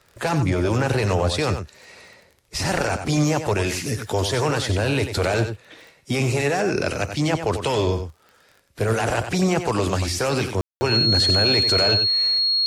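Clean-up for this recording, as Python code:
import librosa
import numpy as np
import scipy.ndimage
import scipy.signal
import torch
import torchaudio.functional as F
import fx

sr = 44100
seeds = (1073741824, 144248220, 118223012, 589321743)

y = fx.fix_declick_ar(x, sr, threshold=6.5)
y = fx.notch(y, sr, hz=4300.0, q=30.0)
y = fx.fix_ambience(y, sr, seeds[0], print_start_s=8.27, print_end_s=8.77, start_s=10.61, end_s=10.81)
y = fx.fix_echo_inverse(y, sr, delay_ms=93, level_db=-8.5)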